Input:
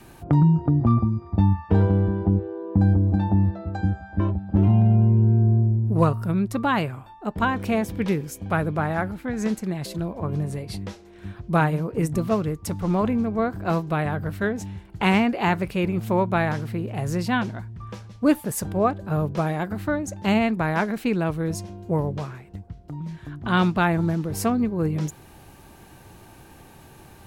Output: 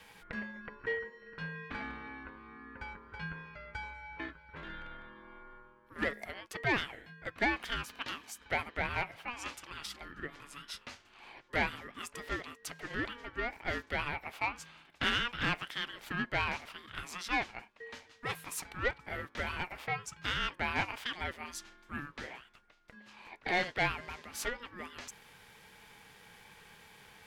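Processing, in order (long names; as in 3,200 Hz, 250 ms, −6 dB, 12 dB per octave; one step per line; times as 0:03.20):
mid-hump overdrive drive 16 dB, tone 1,900 Hz, clips at −6.5 dBFS
high-pass filter 1,300 Hz 12 dB per octave
ring modulation 720 Hz
level −4 dB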